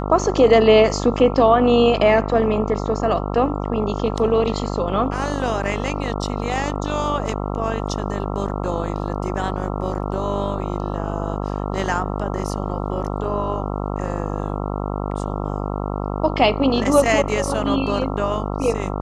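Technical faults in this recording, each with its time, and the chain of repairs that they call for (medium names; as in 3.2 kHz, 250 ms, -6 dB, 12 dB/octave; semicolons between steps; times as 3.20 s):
buzz 50 Hz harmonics 27 -25 dBFS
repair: de-hum 50 Hz, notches 27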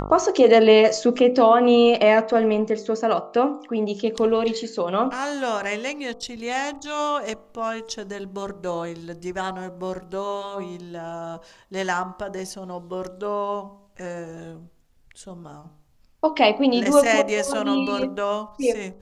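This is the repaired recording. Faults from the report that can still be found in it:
nothing left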